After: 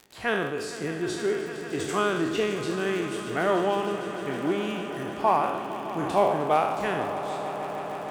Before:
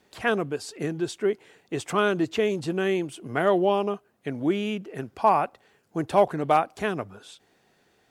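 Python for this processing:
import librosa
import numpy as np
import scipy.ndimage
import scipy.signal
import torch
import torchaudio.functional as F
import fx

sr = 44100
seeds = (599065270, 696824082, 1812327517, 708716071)

y = fx.spec_trails(x, sr, decay_s=0.85)
y = fx.dmg_crackle(y, sr, seeds[0], per_s=52.0, level_db=-31.0)
y = fx.echo_swell(y, sr, ms=153, loudest=5, wet_db=-15)
y = y * 10.0 ** (-4.0 / 20.0)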